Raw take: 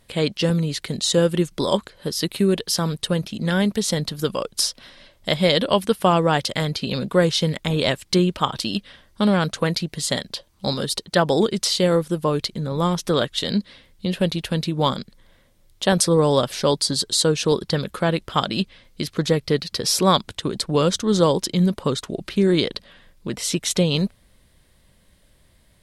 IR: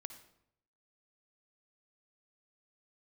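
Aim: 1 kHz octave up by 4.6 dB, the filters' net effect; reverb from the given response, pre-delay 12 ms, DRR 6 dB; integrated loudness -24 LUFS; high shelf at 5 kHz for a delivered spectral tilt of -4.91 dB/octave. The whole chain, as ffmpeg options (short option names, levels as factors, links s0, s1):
-filter_complex "[0:a]equalizer=f=1000:t=o:g=6,highshelf=f=5000:g=-8,asplit=2[s0][s1];[1:a]atrim=start_sample=2205,adelay=12[s2];[s1][s2]afir=irnorm=-1:irlink=0,volume=0.794[s3];[s0][s3]amix=inputs=2:normalize=0,volume=0.631"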